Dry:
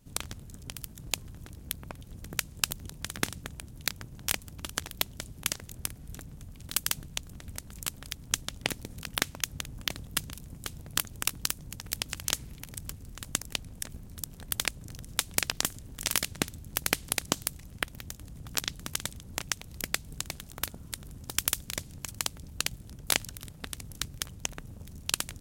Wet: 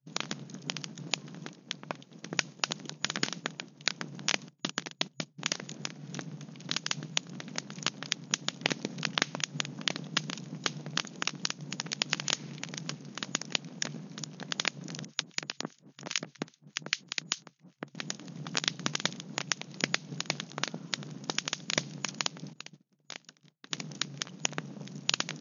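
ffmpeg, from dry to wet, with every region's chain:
-filter_complex "[0:a]asettb=1/sr,asplit=3[s0][s1][s2];[s0]atrim=end=1.504[s3];[s1]atrim=start=1.5:end=3.98,asetpts=PTS-STARTPTS,afade=t=in:d=0.004:c=qsin,afade=t=out:st=2.476:d=0.004:c=qsin,lowshelf=f=170:g=-7,bandreject=f=1500:w=23,aeval=exprs='(mod(1.88*val(0)+1,2)-1)/1.88':c=same[s4];[s2]atrim=start=3.976[s5];[s3][s4]acrossfade=d=0.004:c1=hsin:c2=qsin[s6];[s6][s5]acrossfade=d=0.004:c1=qsin:c2=hsin,asettb=1/sr,asplit=3[s7][s8][s9];[s7]atrim=end=4.484[s10];[s8]atrim=start=4.48:end=5.38,asetpts=PTS-STARTPTS,afade=t=in:d=0.004:c=qsin,afade=t=out:st=0.896:d=0.004:c=qsin,highpass=f=120:w=0.5412,highpass=f=120:w=1.3066,agate=range=0.126:threshold=0.00562:ratio=16:release=100:detection=peak,lowshelf=f=170:g=7[s11];[s9]atrim=start=5.376[s12];[s10][s11]acrossfade=d=0.004:c1=hsin:c2=qsin[s13];[s13][s12]acrossfade=d=0.004:c1=qsin:c2=hsin,asettb=1/sr,asplit=3[s14][s15][s16];[s14]atrim=end=15.054[s17];[s15]atrim=start=15.05:end=17.95,asetpts=PTS-STARTPTS,afade=t=in:d=0.004:c=qsin,afade=t=out:st=2.896:d=0.004:c=qsin,acrossover=split=420|1100|3300[s18][s19][s20][s21];[s18]acompressor=threshold=0.00631:ratio=3[s22];[s19]acompressor=threshold=0.00251:ratio=3[s23];[s20]acompressor=threshold=0.01:ratio=3[s24];[s21]acompressor=threshold=0.0251:ratio=3[s25];[s22][s23][s24][s25]amix=inputs=4:normalize=0,acrossover=split=1300[s26][s27];[s26]aeval=exprs='val(0)*(1-1/2+1/2*cos(2*PI*5*n/s))':c=same[s28];[s27]aeval=exprs='val(0)*(1-1/2-1/2*cos(2*PI*5*n/s))':c=same[s29];[s28][s29]amix=inputs=2:normalize=0[s30];[s16]atrim=start=17.946[s31];[s17][s30]acrossfade=d=0.004:c1=hsin:c2=qsin[s32];[s32][s31]acrossfade=d=0.004:c1=qsin:c2=hsin,asettb=1/sr,asplit=3[s33][s34][s35];[s33]atrim=end=22.534[s36];[s34]atrim=start=22.53:end=23.71,asetpts=PTS-STARTPTS,afade=t=in:d=0.004:c=qsin,afade=t=out:st=1.176:d=0.004:c=qsin,agate=range=0.0224:threshold=0.0141:ratio=3:release=100:detection=peak,acompressor=threshold=0.0112:ratio=12:attack=3.2:release=140:knee=1:detection=peak,asoftclip=type=hard:threshold=0.0316[s37];[s35]atrim=start=23.706[s38];[s36][s37]acrossfade=d=0.004:c1=hsin:c2=qsin[s39];[s39][s38]acrossfade=d=0.004:c1=qsin:c2=hsin,alimiter=limit=0.266:level=0:latency=1:release=127,agate=range=0.0224:threshold=0.00708:ratio=3:detection=peak,afftfilt=real='re*between(b*sr/4096,130,6800)':imag='im*between(b*sr/4096,130,6800)':win_size=4096:overlap=0.75,volume=2.66"

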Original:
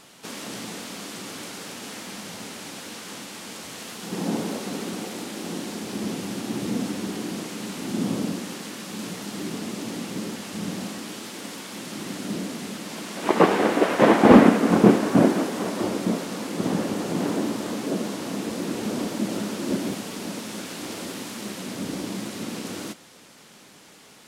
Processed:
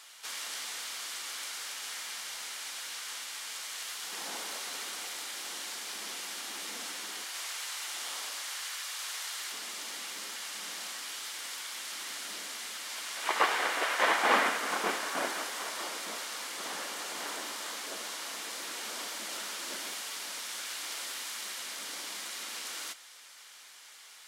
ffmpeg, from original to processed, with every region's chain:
-filter_complex "[0:a]asettb=1/sr,asplit=3[s0][s1][s2];[s0]atrim=end=7.244[s3];[s1]atrim=start=7.24:end=9.52,asetpts=PTS-STARTPTS,afade=t=in:d=0.004:c=qsin,afade=t=out:st=2.276:d=0.004:c=qsin,highpass=610,aecho=1:1:101:0.631,atrim=end_sample=100548[s4];[s2]atrim=start=9.516[s5];[s3][s4]acrossfade=d=0.004:c1=hsin:c2=qsin[s6];[s6][s5]acrossfade=d=0.004:c1=qsin:c2=hsin,highpass=1300,bandreject=f=2600:w=21"

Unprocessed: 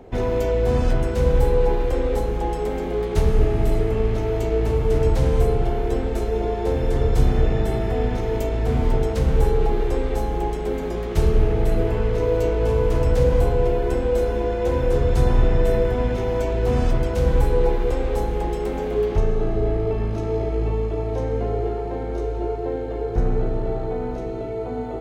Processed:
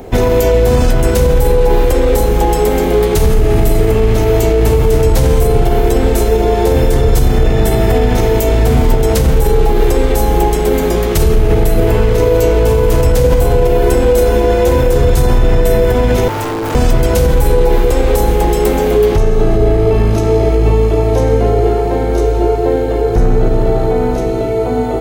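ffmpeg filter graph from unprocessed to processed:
-filter_complex "[0:a]asettb=1/sr,asplit=3[s0][s1][s2];[s0]atrim=end=16.284[s3];[s1]atrim=start=16.28:end=16.75,asetpts=PTS-STARTPTS,afade=t=in:d=0.004:c=qsin,afade=t=out:st=0.466:d=0.004:c=qsin,volume=22.4,asoftclip=hard,volume=0.0447,aeval=exprs='val(0)*sin(2*PI*390*n/s)':c=same[s4];[s2]atrim=start=16.746[s5];[s3][s4]acrossfade=d=0.004:c1=hsin:c2=qsin[s6];[s6][s5]acrossfade=d=0.004:c1=qsin:c2=hsin,aemphasis=mode=production:type=50fm,alimiter=level_in=5.31:limit=0.891:release=50:level=0:latency=1,volume=0.891"

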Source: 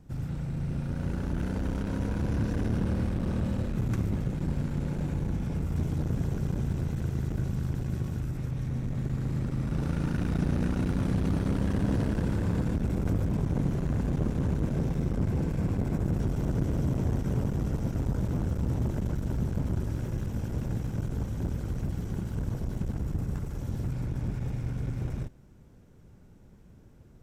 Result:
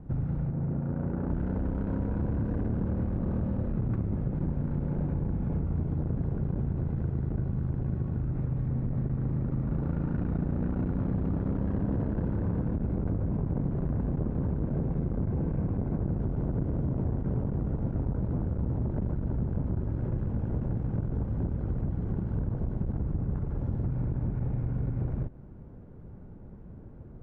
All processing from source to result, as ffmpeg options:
-filter_complex "[0:a]asettb=1/sr,asplit=3[s0][s1][s2];[s0]atrim=end=0.504[s3];[s1]atrim=start=0.5:end=1.3,asetpts=PTS-STARTPTS,afade=t=in:d=0.004:c=qsin,afade=t=out:st=0.796:d=0.004:c=qsin,highpass=f=150:p=1,adynamicsmooth=sensitivity=7.5:basefreq=1300[s4];[s2]atrim=start=1.296[s5];[s3][s4]acrossfade=d=0.004:c1=hsin:c2=qsin[s6];[s6][s5]acrossfade=d=0.004:c1=qsin:c2=hsin,lowpass=1100,acompressor=threshold=0.0178:ratio=4,volume=2.51"

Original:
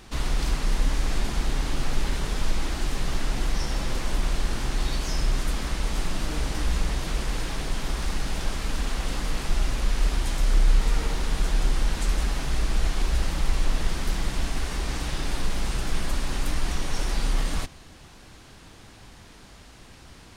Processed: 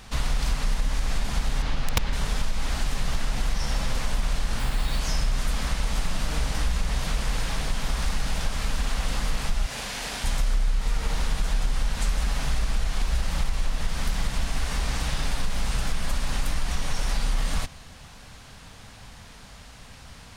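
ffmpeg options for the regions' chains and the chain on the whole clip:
-filter_complex "[0:a]asettb=1/sr,asplit=3[s0][s1][s2];[s0]atrim=end=1.624[s3];[s1]atrim=start=1.62:end=2.13,asetpts=PTS-STARTPTS,afade=t=in:d=0.004:c=qsin,afade=t=out:st=0.506:d=0.004:c=qsin,acrossover=split=5400[s4][s5];[s5]acompressor=threshold=0.00112:ratio=4:attack=1:release=60[s6];[s4][s6]amix=inputs=2:normalize=0,aeval=exprs='(mod(4.47*val(0)+1,2)-1)/4.47':c=same[s7];[s2]atrim=start=2.126[s8];[s3][s7]acrossfade=d=0.004:c1=hsin:c2=qsin[s9];[s9][s8]acrossfade=d=0.004:c1=qsin:c2=hsin,asettb=1/sr,asplit=3[s10][s11][s12];[s10]atrim=end=4.594[s13];[s11]atrim=start=4.59:end=4.99,asetpts=PTS-STARTPTS,afade=t=in:d=0.004:c=qsin,afade=t=out:st=0.396:d=0.004:c=qsin,equalizer=f=6000:t=o:w=0.36:g=-8,acrusher=bits=6:mix=0:aa=0.5[s14];[s12]atrim=start=4.986[s15];[s13][s14]acrossfade=d=0.004:c1=hsin:c2=qsin[s16];[s16][s15]acrossfade=d=0.004:c1=qsin:c2=hsin,asettb=1/sr,asplit=3[s17][s18][s19];[s17]atrim=end=9.664[s20];[s18]atrim=start=9.66:end=10.24,asetpts=PTS-STARTPTS,afade=t=in:d=0.004:c=qsin,afade=t=out:st=0.576:d=0.004:c=qsin,highpass=f=410:p=1,equalizer=f=1200:t=o:w=0.38:g=-5,asplit=2[s21][s22];[s22]adelay=41,volume=0.562[s23];[s21][s23]amix=inputs=2:normalize=0,atrim=end_sample=25578[s24];[s19]atrim=start=10.236[s25];[s20][s24]acrossfade=d=0.004:c1=hsin:c2=qsin[s26];[s26][s25]acrossfade=d=0.004:c1=qsin:c2=hsin,equalizer=f=340:t=o:w=0.47:g=-13,acompressor=threshold=0.0794:ratio=6,volume=1.41"

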